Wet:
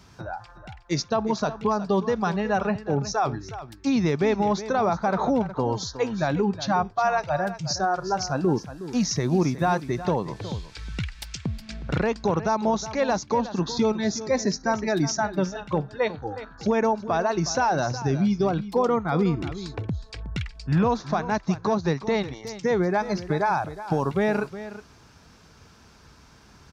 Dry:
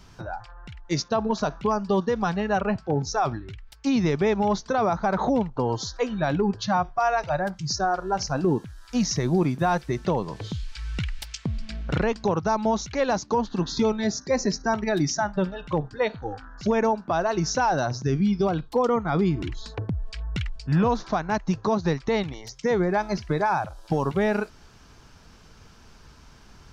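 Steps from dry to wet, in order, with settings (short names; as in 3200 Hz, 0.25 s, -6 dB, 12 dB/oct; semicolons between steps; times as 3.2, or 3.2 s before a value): HPF 61 Hz 12 dB/oct; notch 3000 Hz, Q 18; echo 0.365 s -13.5 dB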